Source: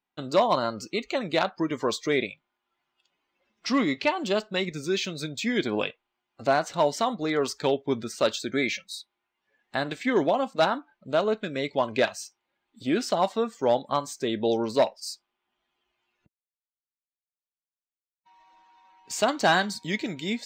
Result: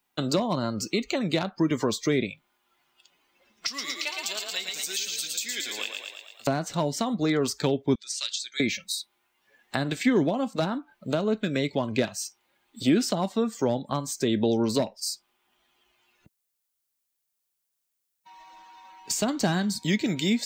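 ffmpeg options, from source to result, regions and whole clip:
-filter_complex "[0:a]asettb=1/sr,asplit=3[a][b][c];[a]atrim=end=3.674[d];[b]atrim=start=3.67:end=6.47,asetpts=PTS-STARTPTS,afade=t=in:d=0.004:c=qsin,afade=t=out:st=2.796:d=0.004:c=qsin,aderivative,asplit=9[e][f][g][h][i][j][k][l][m];[f]adelay=112,afreqshift=31,volume=-5dB[n];[g]adelay=224,afreqshift=62,volume=-9.6dB[o];[h]adelay=336,afreqshift=93,volume=-14.2dB[p];[i]adelay=448,afreqshift=124,volume=-18.7dB[q];[j]adelay=560,afreqshift=155,volume=-23.3dB[r];[k]adelay=672,afreqshift=186,volume=-27.9dB[s];[l]adelay=784,afreqshift=217,volume=-32.5dB[t];[m]adelay=896,afreqshift=248,volume=-37.1dB[u];[e][n][o][p][q][r][s][t][u]amix=inputs=9:normalize=0,atrim=end_sample=123480[v];[c]atrim=start=6.466[w];[d][v]acrossfade=d=0.004:c1=hsin:c2=qsin[x];[x][w]acrossfade=d=0.004:c1=qsin:c2=hsin,asettb=1/sr,asplit=3[y][z][aa];[y]atrim=end=7.954[ab];[z]atrim=start=7.95:end=8.6,asetpts=PTS-STARTPTS,afade=t=in:d=0.004:c=qsin,afade=t=out:st=0.646:d=0.004:c=qsin,asuperpass=centerf=6000:order=4:qfactor=0.86,highshelf=f=6.8k:g=-8.5[ac];[aa]atrim=start=8.596[ad];[ab][ac]acrossfade=d=0.004:c1=hsin:c2=qsin[ae];[ae][ad]acrossfade=d=0.004:c1=qsin:c2=hsin,highshelf=f=5.6k:g=10.5,acrossover=split=280[af][ag];[ag]acompressor=threshold=-35dB:ratio=10[ah];[af][ah]amix=inputs=2:normalize=0,volume=8dB"

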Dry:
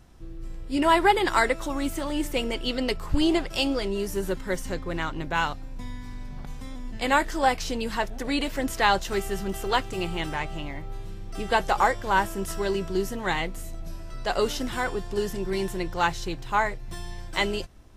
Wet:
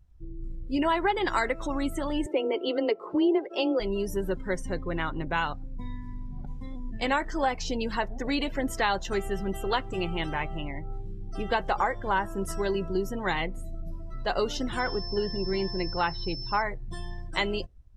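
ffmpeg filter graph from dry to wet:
-filter_complex "[0:a]asettb=1/sr,asplit=3[a][b][c];[a]atrim=end=2.264[d];[b]atrim=start=2.26:end=3.8,asetpts=PTS-STARTPTS,afade=t=in:d=0.004:c=qsin,afade=t=out:st=1.536:d=0.004:c=qsin,highpass=f=360:t=q:w=2.5,aemphasis=mode=reproduction:type=75fm,afreqshift=16[e];[c]atrim=start=3.796[f];[d][e]acrossfade=d=0.004:c1=hsin:c2=qsin[g];[g][f]acrossfade=d=0.004:c1=qsin:c2=hsin,asettb=1/sr,asplit=3[h][i][j];[h]atrim=end=14.794[k];[i]atrim=start=14.79:end=16.62,asetpts=PTS-STARTPTS,afade=t=in:d=0.004:c=qsin,afade=t=out:st=1.826:d=0.004:c=qsin,acrossover=split=4900[l][m];[m]acompressor=threshold=-57dB:ratio=4:attack=1:release=60[n];[l][n]amix=inputs=2:normalize=0,aeval=exprs='val(0)+0.0141*sin(2*PI*5300*n/s)':c=same[o];[j]atrim=start=16.616[p];[k][o]acrossfade=d=0.004:c1=hsin:c2=qsin[q];[q][p]acrossfade=d=0.004:c1=qsin:c2=hsin,acompressor=threshold=-23dB:ratio=3,afftdn=nr=22:nf=-40"

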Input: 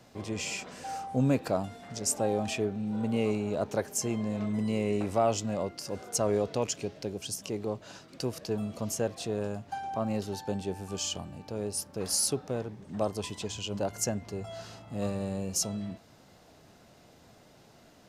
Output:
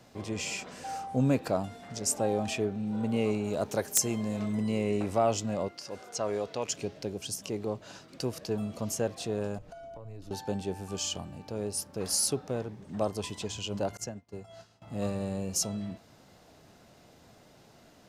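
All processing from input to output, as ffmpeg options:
-filter_complex "[0:a]asettb=1/sr,asplit=3[a][b][c];[a]atrim=end=3.444[d];[b]atrim=start=3.44:end=4.55,asetpts=PTS-STARTPTS,afade=t=in:d=0.004:c=qsin,afade=t=out:st=1.106:d=0.004:c=qsin,aemphasis=mode=production:type=cd,aeval=exprs='(mod(3.98*val(0)+1,2)-1)/3.98':c=same[e];[c]atrim=start=4.546[f];[d][e]acrossfade=d=0.004:c1=hsin:c2=qsin[g];[g][f]acrossfade=d=0.004:c1=qsin:c2=hsin,asettb=1/sr,asplit=3[h][i][j];[h]atrim=end=5.684[k];[i]atrim=start=5.68:end=6.69,asetpts=PTS-STARTPTS,afade=t=in:d=0.004:c=qsin,afade=t=out:st=1.006:d=0.004:c=qsin,acrossover=split=6300[l][m];[m]acompressor=threshold=-58dB:ratio=4:attack=1:release=60[n];[l][n]amix=inputs=2:normalize=0,lowshelf=f=380:g=-10[o];[j]atrim=start=6.686[p];[k][o]acrossfade=d=0.004:c1=hsin:c2=qsin[q];[q][p]acrossfade=d=0.004:c1=qsin:c2=hsin,asettb=1/sr,asplit=3[r][s][t];[r]atrim=end=9.584[u];[s]atrim=start=9.58:end=10.31,asetpts=PTS-STARTPTS,afade=t=in:d=0.004:c=qsin,afade=t=out:st=0.726:d=0.004:c=qsin,afreqshift=-110,acompressor=threshold=-44dB:ratio=6:attack=3.2:release=140:knee=1:detection=peak,tiltshelf=f=760:g=3.5[v];[t]atrim=start=10.306[w];[u][v]acrossfade=d=0.004:c1=hsin:c2=qsin[x];[x][w]acrossfade=d=0.004:c1=qsin:c2=hsin,asettb=1/sr,asplit=3[y][z][aa];[y]atrim=end=13.974[ab];[z]atrim=start=13.97:end=14.82,asetpts=PTS-STARTPTS,afade=t=in:d=0.004:c=qsin,afade=t=out:st=0.846:d=0.004:c=qsin,acrossover=split=190|6500[ac][ad][ae];[ac]acompressor=threshold=-43dB:ratio=4[af];[ad]acompressor=threshold=-37dB:ratio=4[ag];[ae]acompressor=threshold=-48dB:ratio=4[ah];[af][ag][ah]amix=inputs=3:normalize=0,agate=range=-33dB:threshold=-36dB:ratio=3:release=100:detection=peak[ai];[aa]atrim=start=14.816[aj];[ab][ai]acrossfade=d=0.004:c1=hsin:c2=qsin[ak];[ak][aj]acrossfade=d=0.004:c1=qsin:c2=hsin"

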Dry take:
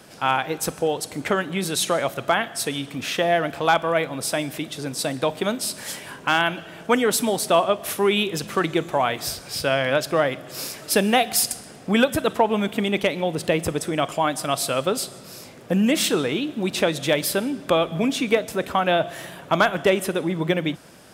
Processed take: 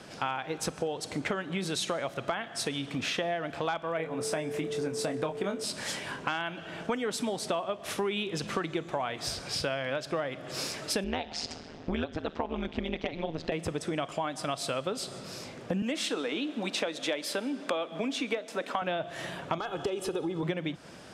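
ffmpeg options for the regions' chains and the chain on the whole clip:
-filter_complex "[0:a]asettb=1/sr,asplit=3[a][b][c];[a]atrim=end=3.974[d];[b]atrim=start=3.97:end=5.64,asetpts=PTS-STARTPTS,afade=t=in:d=0.004:c=qsin,afade=t=out:st=1.666:d=0.004:c=qsin,equalizer=f=3.9k:t=o:w=0.97:g=-8,asplit=2[e][f];[f]adelay=25,volume=-6dB[g];[e][g]amix=inputs=2:normalize=0,atrim=end_sample=73647,aeval=exprs='val(0)+0.0355*sin(2*PI*440*n/s)':c=same[h];[c]atrim=start=5.636[i];[d][h]acrossfade=d=0.004:c1=hsin:c2=qsin[j];[j][i]acrossfade=d=0.004:c1=qsin:c2=hsin,asettb=1/sr,asplit=3[k][l][m];[k]atrim=end=11.044[n];[l]atrim=start=11.04:end=13.52,asetpts=PTS-STARTPTS,afade=t=in:d=0.004:c=qsin,afade=t=out:st=2.476:d=0.004:c=qsin,lowpass=f=5.7k:w=0.5412,lowpass=f=5.7k:w=1.3066,equalizer=f=260:t=o:w=0.28:g=6.5,tremolo=f=160:d=0.974[o];[m]atrim=start=13.516[p];[n][o]acrossfade=d=0.004:c1=hsin:c2=qsin[q];[q][p]acrossfade=d=0.004:c1=qsin:c2=hsin,asettb=1/sr,asplit=3[r][s][t];[r]atrim=end=15.824[u];[s]atrim=start=15.82:end=18.82,asetpts=PTS-STARTPTS,afade=t=in:d=0.004:c=qsin,afade=t=out:st=2.996:d=0.004:c=qsin,highpass=f=240:w=0.5412,highpass=f=240:w=1.3066,bandreject=f=370:w=6.4[v];[t]atrim=start=18.816[w];[u][v]acrossfade=d=0.004:c1=hsin:c2=qsin[x];[x][w]acrossfade=d=0.004:c1=qsin:c2=hsin,asettb=1/sr,asplit=3[y][z][aa];[y]atrim=end=19.584[ab];[z]atrim=start=19.58:end=20.43,asetpts=PTS-STARTPTS,afade=t=in:d=0.004:c=qsin,afade=t=out:st=0.846:d=0.004:c=qsin,equalizer=f=2k:w=2.9:g=-11,acompressor=threshold=-26dB:ratio=2:attack=3.2:release=140:knee=1:detection=peak,aecho=1:1:2.4:0.62,atrim=end_sample=37485[ac];[aa]atrim=start=20.426[ad];[ab][ac]acrossfade=d=0.004:c1=hsin:c2=qsin[ae];[ae][ad]acrossfade=d=0.004:c1=qsin:c2=hsin,lowpass=6.8k,acompressor=threshold=-29dB:ratio=6"

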